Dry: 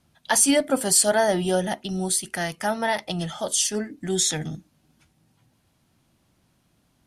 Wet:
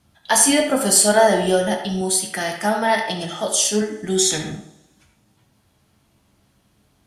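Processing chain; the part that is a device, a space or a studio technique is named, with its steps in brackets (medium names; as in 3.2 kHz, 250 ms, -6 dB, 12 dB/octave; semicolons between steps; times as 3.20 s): two-slope reverb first 0.36 s, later 1.6 s, from -26 dB, DRR 3 dB; filtered reverb send (on a send at -6.5 dB: high-pass 320 Hz 24 dB/octave + low-pass 4.4 kHz + reverberation RT60 0.55 s, pre-delay 66 ms); 2.01–3.82 s: on the sum: high-pass 90 Hz; trim +2.5 dB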